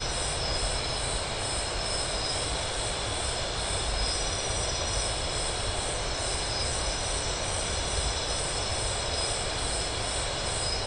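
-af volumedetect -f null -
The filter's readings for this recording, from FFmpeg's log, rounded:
mean_volume: -29.9 dB
max_volume: -15.5 dB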